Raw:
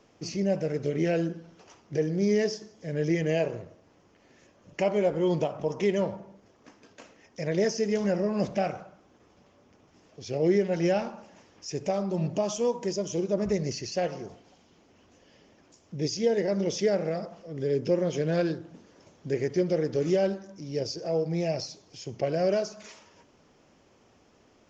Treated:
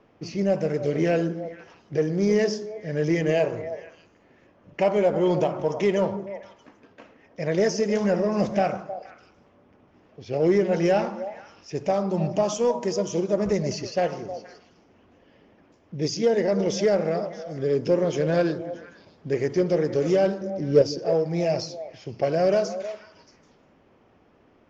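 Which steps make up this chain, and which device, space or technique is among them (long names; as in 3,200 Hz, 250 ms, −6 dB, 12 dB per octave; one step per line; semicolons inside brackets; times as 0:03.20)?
dynamic equaliser 1,000 Hz, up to +5 dB, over −40 dBFS, Q 0.79
low-pass that shuts in the quiet parts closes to 2,400 Hz, open at −22.5 dBFS
0:20.41–0:20.82: low shelf with overshoot 710 Hz +7.5 dB, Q 3
echo through a band-pass that steps 157 ms, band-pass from 230 Hz, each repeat 1.4 octaves, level −8 dB
parallel distortion (in parallel at −10 dB: hard clipping −20 dBFS, distortion −13 dB)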